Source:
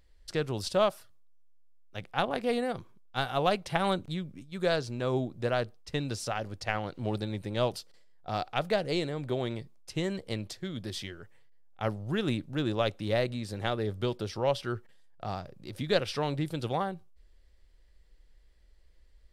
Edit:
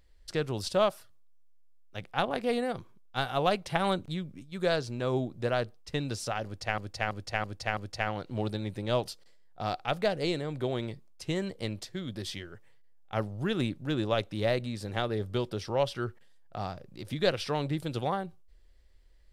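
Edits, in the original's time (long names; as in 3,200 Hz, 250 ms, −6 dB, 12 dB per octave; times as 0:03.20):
0:06.45–0:06.78: repeat, 5 plays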